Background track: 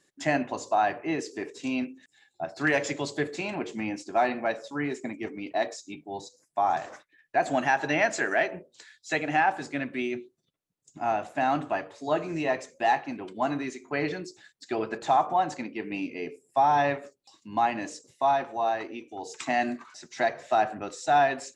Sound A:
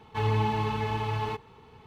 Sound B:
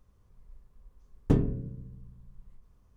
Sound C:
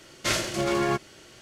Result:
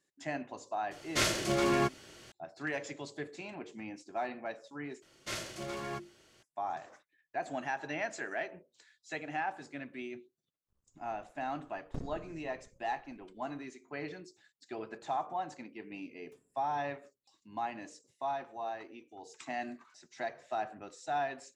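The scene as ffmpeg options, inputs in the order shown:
ffmpeg -i bed.wav -i cue0.wav -i cue1.wav -i cue2.wav -filter_complex "[3:a]asplit=2[link_01][link_02];[2:a]asplit=2[link_03][link_04];[0:a]volume=-12dB[link_05];[link_02]bandreject=frequency=50:width_type=h:width=6,bandreject=frequency=100:width_type=h:width=6,bandreject=frequency=150:width_type=h:width=6,bandreject=frequency=200:width_type=h:width=6,bandreject=frequency=250:width_type=h:width=6,bandreject=frequency=300:width_type=h:width=6,bandreject=frequency=350:width_type=h:width=6[link_06];[link_03]aeval=exprs='max(val(0),0)':channel_layout=same[link_07];[link_04]aderivative[link_08];[link_05]asplit=2[link_09][link_10];[link_09]atrim=end=5.024[link_11];[link_06]atrim=end=1.41,asetpts=PTS-STARTPTS,volume=-13dB[link_12];[link_10]atrim=start=6.426[link_13];[link_01]atrim=end=1.41,asetpts=PTS-STARTPTS,volume=-3.5dB,afade=type=in:duration=0.004:curve=hsin,afade=type=out:start_time=1.406:duration=0.004:curve=hsin,adelay=910[link_14];[link_07]atrim=end=2.96,asetpts=PTS-STARTPTS,volume=-13dB,afade=type=in:duration=0.004:curve=hsin,afade=type=out:start_time=2.956:duration=0.004:curve=hsin,adelay=10640[link_15];[link_08]atrim=end=2.96,asetpts=PTS-STARTPTS,volume=-17dB,afade=type=in:duration=0.004:curve=hsin,afade=type=out:start_time=2.956:duration=0.004:curve=hsin,adelay=15020[link_16];[link_11][link_12]acrossfade=duration=0.004:curve1=hsin:curve2=hsin[link_17];[link_17][link_13]acrossfade=duration=0.004:curve1=hsin:curve2=hsin[link_18];[link_18][link_14][link_15][link_16]amix=inputs=4:normalize=0" out.wav

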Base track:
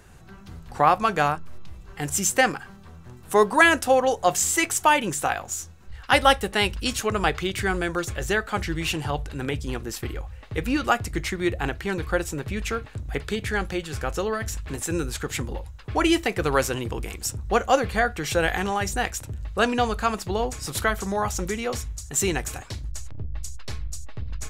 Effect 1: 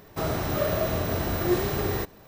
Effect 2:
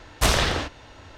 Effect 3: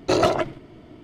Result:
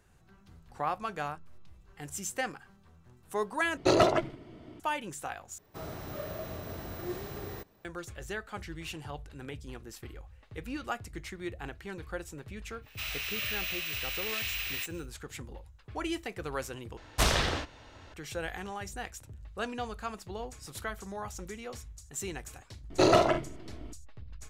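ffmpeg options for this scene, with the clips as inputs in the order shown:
ffmpeg -i bed.wav -i cue0.wav -i cue1.wav -i cue2.wav -filter_complex "[3:a]asplit=2[link_01][link_02];[1:a]asplit=2[link_03][link_04];[0:a]volume=-14dB[link_05];[link_04]highpass=frequency=2600:width_type=q:width=5.4[link_06];[link_02]aecho=1:1:43|66:0.376|0.211[link_07];[link_05]asplit=4[link_08][link_09][link_10][link_11];[link_08]atrim=end=3.774[link_12];[link_01]atrim=end=1.03,asetpts=PTS-STARTPTS,volume=-4dB[link_13];[link_09]atrim=start=4.796:end=5.584[link_14];[link_03]atrim=end=2.27,asetpts=PTS-STARTPTS,volume=-13.5dB[link_15];[link_10]atrim=start=7.846:end=16.974[link_16];[2:a]atrim=end=1.17,asetpts=PTS-STARTPTS,volume=-6dB[link_17];[link_11]atrim=start=18.136[link_18];[link_06]atrim=end=2.27,asetpts=PTS-STARTPTS,volume=-3.5dB,afade=type=in:duration=0.1,afade=type=out:start_time=2.17:duration=0.1,adelay=12810[link_19];[link_07]atrim=end=1.03,asetpts=PTS-STARTPTS,volume=-3.5dB,afade=type=in:duration=0.004:curve=hsin,afade=type=out:start_time=1.026:duration=0.004:curve=hsin,adelay=22900[link_20];[link_12][link_13]acrossfade=duration=0.004:curve1=hsin:curve2=hsin[link_21];[link_21][link_14]acrossfade=duration=0.004:curve1=hsin:curve2=hsin[link_22];[link_22][link_15]acrossfade=duration=0.004:curve1=hsin:curve2=hsin[link_23];[link_23][link_16]acrossfade=duration=0.004:curve1=hsin:curve2=hsin[link_24];[link_24][link_17]acrossfade=duration=0.004:curve1=hsin:curve2=hsin[link_25];[link_25][link_18]acrossfade=duration=0.004:curve1=hsin:curve2=hsin[link_26];[link_26][link_19][link_20]amix=inputs=3:normalize=0" out.wav

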